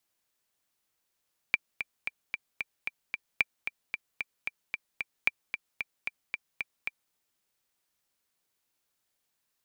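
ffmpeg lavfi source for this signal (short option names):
-f lavfi -i "aevalsrc='pow(10,(-9.5-9*gte(mod(t,7*60/225),60/225))/20)*sin(2*PI*2360*mod(t,60/225))*exp(-6.91*mod(t,60/225)/0.03)':d=5.6:s=44100"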